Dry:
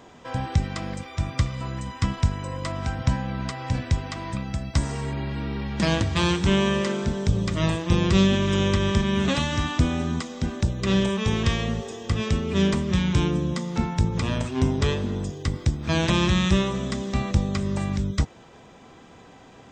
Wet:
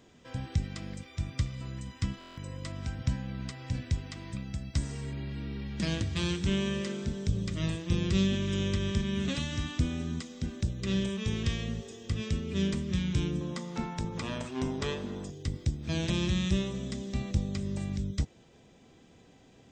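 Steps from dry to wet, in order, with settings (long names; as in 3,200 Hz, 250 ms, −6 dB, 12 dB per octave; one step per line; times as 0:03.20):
parametric band 910 Hz −11 dB 1.5 octaves, from 0:13.41 75 Hz, from 0:15.30 1,100 Hz
buffer that repeats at 0:02.19, samples 1,024, times 7
level −7 dB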